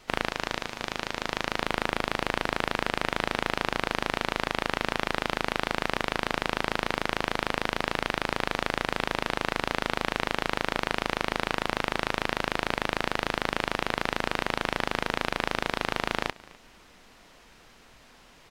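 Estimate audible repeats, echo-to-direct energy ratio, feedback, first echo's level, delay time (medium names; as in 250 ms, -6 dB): 1, -22.5 dB, no regular repeats, -22.5 dB, 252 ms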